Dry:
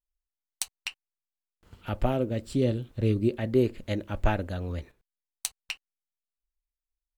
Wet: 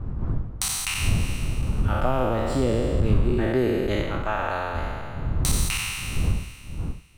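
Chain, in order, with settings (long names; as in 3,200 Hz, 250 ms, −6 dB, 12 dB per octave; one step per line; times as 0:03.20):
peak hold with a decay on every bin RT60 2.37 s
wind on the microphone 89 Hz −22 dBFS
parametric band 1,200 Hz +9 dB 0.89 octaves
downward compressor 3 to 1, threshold −17 dBFS, peak gain reduction 8 dB
0:04.02–0:04.75: bass and treble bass −11 dB, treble −3 dB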